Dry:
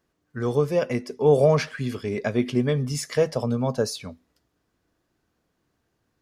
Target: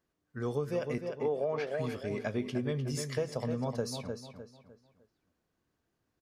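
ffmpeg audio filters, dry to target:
-filter_complex "[0:a]asettb=1/sr,asplit=3[a][b][c];[a]atrim=end=0.984[d];[b]atrim=start=0.98:end=1.67,asetpts=PTS-STARTPTS,afade=t=in:d=0.004:c=qsin,afade=t=out:st=0.686:d=0.004:c=qsin,acrossover=split=240 3700:gain=0.178 1 0.178[e][f][g];[e][f][g]amix=inputs=3:normalize=0[h];[c]atrim=start=1.666[i];[d][h]acrossfade=d=0.004:c1=hsin:c2=qsin[j];[j][i]acrossfade=d=0.004:c1=qsin:c2=hsin,asplit=2[k][l];[l]adelay=303,lowpass=f=4.3k:p=1,volume=-8dB,asplit=2[m][n];[n]adelay=303,lowpass=f=4.3k:p=1,volume=0.35,asplit=2[o][p];[p]adelay=303,lowpass=f=4.3k:p=1,volume=0.35,asplit=2[q][r];[r]adelay=303,lowpass=f=4.3k:p=1,volume=0.35[s];[k][m][o][q][s]amix=inputs=5:normalize=0,acompressor=threshold=-20dB:ratio=6,volume=-8dB"

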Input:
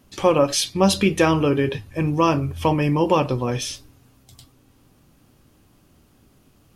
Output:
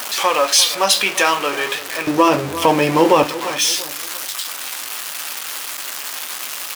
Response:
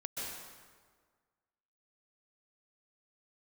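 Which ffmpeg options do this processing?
-filter_complex "[0:a]aeval=exprs='val(0)+0.5*0.0668*sgn(val(0))':c=same,asetnsamples=n=441:p=0,asendcmd='2.07 highpass f 330;3.24 highpass f 1300',highpass=920,asplit=2[a][b];[b]adelay=343,lowpass=f=2k:p=1,volume=-15.5dB,asplit=2[c][d];[d]adelay=343,lowpass=f=2k:p=1,volume=0.39,asplit=2[e][f];[f]adelay=343,lowpass=f=2k:p=1,volume=0.39[g];[a][c][e][g]amix=inputs=4:normalize=0,flanger=delay=8.6:depth=6.8:regen=-58:speed=0.43:shape=triangular,alimiter=level_in=12.5dB:limit=-1dB:release=50:level=0:latency=1,volume=-1dB"

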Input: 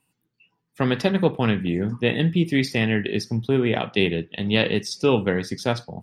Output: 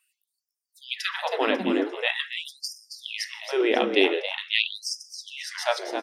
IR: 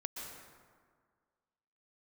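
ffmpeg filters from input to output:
-filter_complex "[0:a]asplit=5[a][b][c][d][e];[b]adelay=272,afreqshift=87,volume=-9dB[f];[c]adelay=544,afreqshift=174,volume=-17.9dB[g];[d]adelay=816,afreqshift=261,volume=-26.7dB[h];[e]adelay=1088,afreqshift=348,volume=-35.6dB[i];[a][f][g][h][i]amix=inputs=5:normalize=0,asplit=2[j][k];[1:a]atrim=start_sample=2205,afade=t=out:st=0.23:d=0.01,atrim=end_sample=10584[l];[k][l]afir=irnorm=-1:irlink=0,volume=-12.5dB[m];[j][m]amix=inputs=2:normalize=0,afftfilt=real='re*gte(b*sr/1024,210*pow(4900/210,0.5+0.5*sin(2*PI*0.45*pts/sr)))':imag='im*gte(b*sr/1024,210*pow(4900/210,0.5+0.5*sin(2*PI*0.45*pts/sr)))':win_size=1024:overlap=0.75"

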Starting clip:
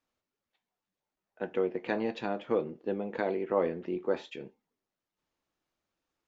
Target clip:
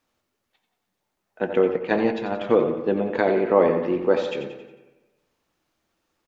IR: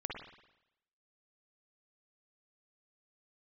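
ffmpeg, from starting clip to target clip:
-filter_complex "[0:a]aecho=1:1:90|180|270|360|450:0.355|0.17|0.0817|0.0392|0.0188,asettb=1/sr,asplit=3[a][b][c];[a]atrim=end=1.764[d];[b]atrim=start=1.76:end=2.41,asetpts=PTS-STARTPTS,afade=t=in:d=0.004:c=qsin,afade=t=out:st=0.646:d=0.004:c=qsin,agate=range=-7dB:threshold=-30dB:ratio=16:detection=peak[e];[c]atrim=start=2.406[f];[d][e]acrossfade=d=0.004:c1=hsin:c2=qsin[g];[g][f]acrossfade=d=0.004:c1=qsin:c2=hsin,asplit=2[h][i];[1:a]atrim=start_sample=2205,asetrate=31311,aresample=44100[j];[i][j]afir=irnorm=-1:irlink=0,volume=-9.5dB[k];[h][k]amix=inputs=2:normalize=0,volume=8dB"

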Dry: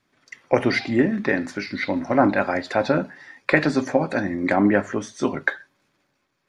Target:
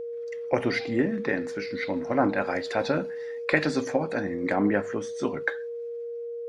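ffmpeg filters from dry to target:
-filter_complex "[0:a]aeval=exprs='val(0)+0.0501*sin(2*PI*470*n/s)':c=same,asplit=3[a][b][c];[a]afade=t=out:st=2.44:d=0.02[d];[b]adynamicequalizer=threshold=0.0251:dfrequency=2300:dqfactor=0.7:tfrequency=2300:tqfactor=0.7:attack=5:release=100:ratio=0.375:range=2.5:mode=boostabove:tftype=highshelf,afade=t=in:st=2.44:d=0.02,afade=t=out:st=3.96:d=0.02[e];[c]afade=t=in:st=3.96:d=0.02[f];[d][e][f]amix=inputs=3:normalize=0,volume=-6dB"

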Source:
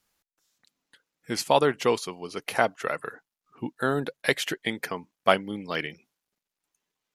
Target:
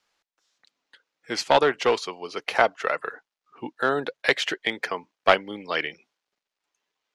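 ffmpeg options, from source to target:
-filter_complex "[0:a]aeval=exprs='clip(val(0),-1,0.1)':c=same,acrossover=split=350 6500:gain=0.224 1 0.0794[a][b][c];[a][b][c]amix=inputs=3:normalize=0,volume=4.5dB"

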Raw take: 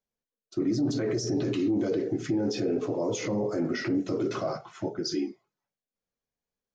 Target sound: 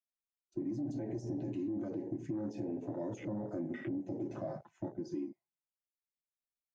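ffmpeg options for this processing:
-filter_complex "[0:a]superequalizer=7b=0.282:10b=0.282:13b=0.447:14b=0.447:16b=1.58,afwtdn=0.0126,acrossover=split=620|1500[a][b][c];[a]acompressor=threshold=-33dB:ratio=4[d];[b]acompressor=threshold=-50dB:ratio=4[e];[c]acompressor=threshold=-54dB:ratio=4[f];[d][e][f]amix=inputs=3:normalize=0,volume=-3.5dB"

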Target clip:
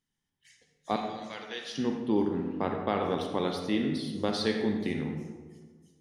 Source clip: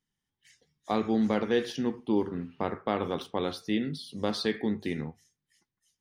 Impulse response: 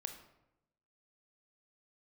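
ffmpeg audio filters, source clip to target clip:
-filter_complex "[0:a]asettb=1/sr,asplit=3[a][b][c];[a]atrim=end=0.964[d];[b]atrim=start=0.96:end=1.76,asetpts=PTS-STARTPTS,afade=t=in:d=0.004:c=qsin,afade=t=out:st=0.796:d=0.004:c=qsin,bandpass=f=4.8k:t=q:w=0.68:csg=0[e];[c]atrim=start=1.756[f];[d][e]acrossfade=d=0.004:c1=hsin:c2=qsin[g];[g][f]acrossfade=d=0.004:c1=qsin:c2=hsin[h];[1:a]atrim=start_sample=2205,asetrate=22932,aresample=44100[i];[h][i]afir=irnorm=-1:irlink=0"

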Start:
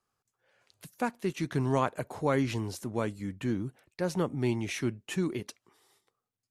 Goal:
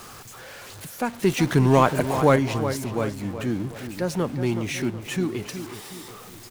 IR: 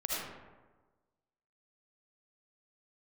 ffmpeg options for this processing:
-filter_complex "[0:a]aeval=exprs='val(0)+0.5*0.0106*sgn(val(0))':c=same,asettb=1/sr,asplit=3[a][b][c];[a]atrim=end=1.234[d];[b]atrim=start=1.23:end=2.36,asetpts=PTS-STARTPTS,afade=t=in:d=0.004:c=qsin,afade=t=out:st=1.126:d=0.004:c=qsin,acontrast=67[e];[c]atrim=start=2.356[f];[d][e]acrossfade=d=0.004:c1=hsin:c2=qsin[g];[g][f]acrossfade=d=0.004:c1=qsin:c2=hsin,asplit=2[h][i];[i]adelay=370,lowpass=f=4.2k:p=1,volume=-10dB,asplit=2[j][k];[k]adelay=370,lowpass=f=4.2k:p=1,volume=0.44,asplit=2[l][m];[m]adelay=370,lowpass=f=4.2k:p=1,volume=0.44,asplit=2[n][o];[o]adelay=370,lowpass=f=4.2k:p=1,volume=0.44,asplit=2[p][q];[q]adelay=370,lowpass=f=4.2k:p=1,volume=0.44[r];[h][j][l][n][p][r]amix=inputs=6:normalize=0,volume=3.5dB"

